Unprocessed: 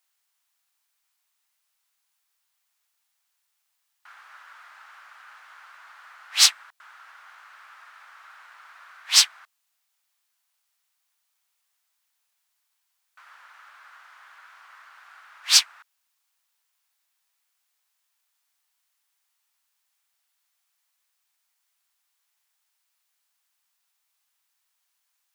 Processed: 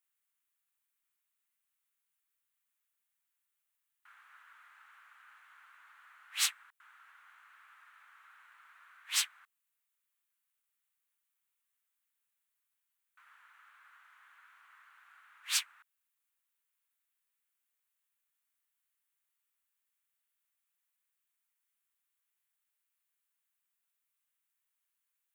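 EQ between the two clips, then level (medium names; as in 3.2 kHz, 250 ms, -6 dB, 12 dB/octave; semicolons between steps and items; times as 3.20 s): peaking EQ 640 Hz -13.5 dB 1.2 oct; peaking EQ 5 kHz -12.5 dB 0.96 oct; -7.0 dB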